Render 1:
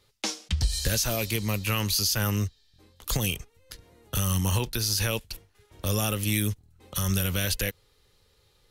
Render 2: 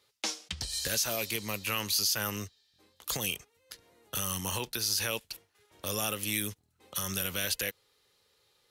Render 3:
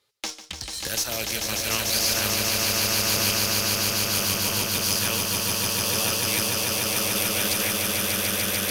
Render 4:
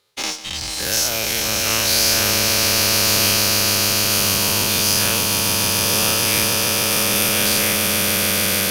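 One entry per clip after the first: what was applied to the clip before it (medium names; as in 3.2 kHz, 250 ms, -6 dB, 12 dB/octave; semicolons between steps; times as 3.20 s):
high-pass 430 Hz 6 dB/octave; trim -2.5 dB
Chebyshev shaper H 4 -24 dB, 7 -24 dB, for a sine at -15.5 dBFS; echo with a slow build-up 147 ms, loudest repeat 8, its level -3.5 dB; trim +3.5 dB
every event in the spectrogram widened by 120 ms; trim +1.5 dB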